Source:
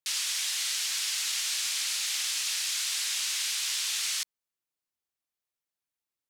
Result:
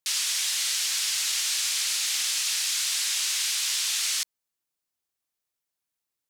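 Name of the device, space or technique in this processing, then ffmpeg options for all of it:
exciter from parts: -filter_complex "[0:a]asplit=2[a][b];[b]highpass=3.5k,asoftclip=type=tanh:threshold=-33dB,volume=-9.5dB[c];[a][c]amix=inputs=2:normalize=0,volume=3dB"

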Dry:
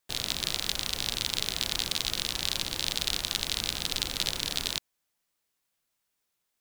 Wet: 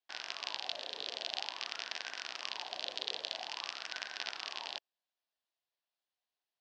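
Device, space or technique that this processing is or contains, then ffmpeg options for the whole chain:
voice changer toy: -af "aeval=exprs='val(0)*sin(2*PI*1000*n/s+1000*0.55/0.49*sin(2*PI*0.49*n/s))':c=same,highpass=430,equalizer=f=480:t=q:w=4:g=-4,equalizer=f=700:t=q:w=4:g=4,equalizer=f=1.3k:t=q:w=4:g=-7,equalizer=f=2.2k:t=q:w=4:g=-6,lowpass=f=4.6k:w=0.5412,lowpass=f=4.6k:w=1.3066,volume=-4dB"

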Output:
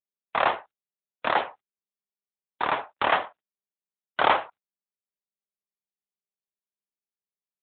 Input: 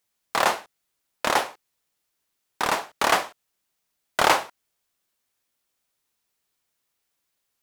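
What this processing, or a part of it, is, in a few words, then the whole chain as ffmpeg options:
mobile call with aggressive noise cancelling: -af "highpass=f=110:p=1,afftdn=nr=23:nf=-41" -ar 8000 -c:a libopencore_amrnb -b:a 12200

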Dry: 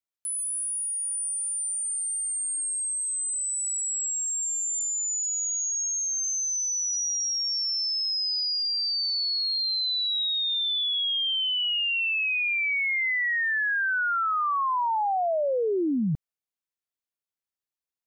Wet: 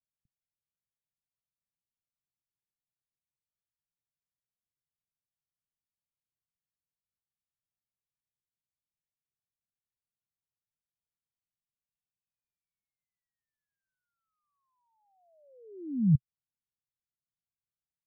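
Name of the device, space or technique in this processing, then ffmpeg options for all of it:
the neighbour's flat through the wall: -af "lowpass=f=190:w=0.5412,lowpass=f=190:w=1.3066,equalizer=f=130:t=o:w=0.78:g=5,volume=3dB"

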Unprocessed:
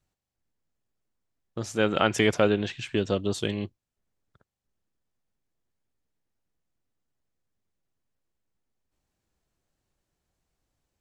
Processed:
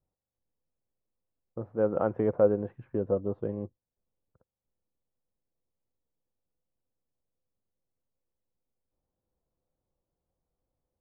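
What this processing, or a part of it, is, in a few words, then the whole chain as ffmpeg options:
under water: -af "lowpass=f=1.1k:w=0.5412,lowpass=f=1.1k:w=1.3066,equalizer=f=510:t=o:w=0.22:g=9,volume=-5dB"

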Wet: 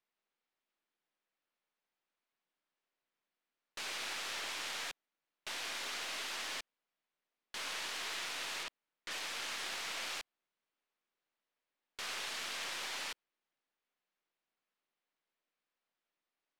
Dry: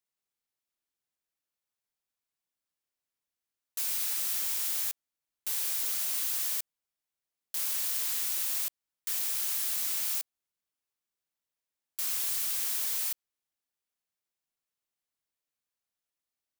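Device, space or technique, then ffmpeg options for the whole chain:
crystal radio: -filter_complex "[0:a]asettb=1/sr,asplit=3[a][b][c];[a]atrim=end=8.634[d];[b]atrim=start=8.63:end=9.11,asetpts=PTS-STARTPTS,afade=t=in:d=0.004:c=qsin,afade=t=out:st=0.476:d=0.004:c=qsin,highshelf=f=9.3k:g=-10[e];[c]atrim=start=9.106[f];[d][e]acrossfade=d=0.004:c1=hsin:c2=qsin[g];[g][f]acrossfade=d=0.004:c1=qsin:c2=hsin,highpass=210,lowpass=3k,aeval=exprs='if(lt(val(0),0),0.708*val(0),val(0))':c=same,volume=7dB"

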